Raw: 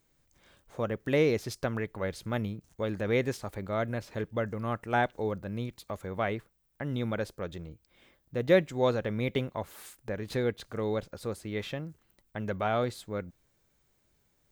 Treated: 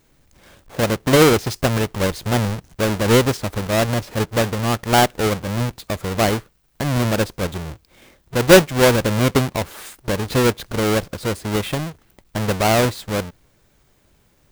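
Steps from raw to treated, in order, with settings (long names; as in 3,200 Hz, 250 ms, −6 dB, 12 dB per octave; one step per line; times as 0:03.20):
each half-wave held at its own peak
level +8.5 dB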